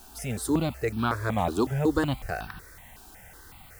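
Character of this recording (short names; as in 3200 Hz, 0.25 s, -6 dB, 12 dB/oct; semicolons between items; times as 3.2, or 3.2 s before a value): a quantiser's noise floor 10-bit, dither triangular; notches that jump at a steady rate 5.4 Hz 540–2000 Hz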